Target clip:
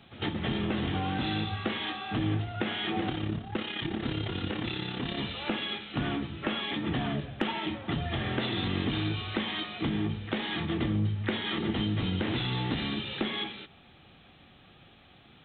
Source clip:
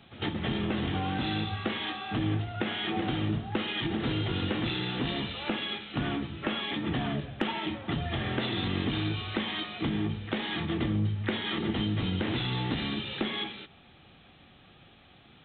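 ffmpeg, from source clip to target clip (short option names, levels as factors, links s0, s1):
-filter_complex "[0:a]asplit=3[s0][s1][s2];[s0]afade=t=out:st=3.08:d=0.02[s3];[s1]tremolo=f=34:d=0.621,afade=t=in:st=3.08:d=0.02,afade=t=out:st=5.17:d=0.02[s4];[s2]afade=t=in:st=5.17:d=0.02[s5];[s3][s4][s5]amix=inputs=3:normalize=0"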